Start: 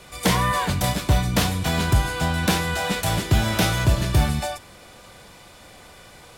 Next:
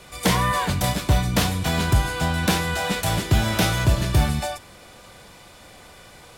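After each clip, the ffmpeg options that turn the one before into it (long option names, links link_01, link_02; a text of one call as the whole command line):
ffmpeg -i in.wav -af anull out.wav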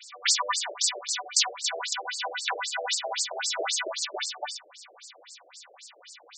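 ffmpeg -i in.wav -af "aemphasis=mode=production:type=riaa,aeval=exprs='val(0)+0.0251*(sin(2*PI*60*n/s)+sin(2*PI*2*60*n/s)/2+sin(2*PI*3*60*n/s)/3+sin(2*PI*4*60*n/s)/4+sin(2*PI*5*60*n/s)/5)':channel_layout=same,afftfilt=real='re*between(b*sr/1024,480*pow(6200/480,0.5+0.5*sin(2*PI*3.8*pts/sr))/1.41,480*pow(6200/480,0.5+0.5*sin(2*PI*3.8*pts/sr))*1.41)':imag='im*between(b*sr/1024,480*pow(6200/480,0.5+0.5*sin(2*PI*3.8*pts/sr))/1.41,480*pow(6200/480,0.5+0.5*sin(2*PI*3.8*pts/sr))*1.41)':win_size=1024:overlap=0.75" out.wav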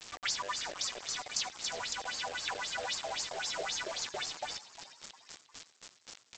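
ffmpeg -i in.wav -filter_complex "[0:a]acompressor=threshold=-40dB:ratio=2,aresample=16000,acrusher=bits=6:mix=0:aa=0.000001,aresample=44100,asplit=6[link_01][link_02][link_03][link_04][link_05][link_06];[link_02]adelay=354,afreqshift=97,volume=-15dB[link_07];[link_03]adelay=708,afreqshift=194,volume=-21.2dB[link_08];[link_04]adelay=1062,afreqshift=291,volume=-27.4dB[link_09];[link_05]adelay=1416,afreqshift=388,volume=-33.6dB[link_10];[link_06]adelay=1770,afreqshift=485,volume=-39.8dB[link_11];[link_01][link_07][link_08][link_09][link_10][link_11]amix=inputs=6:normalize=0" out.wav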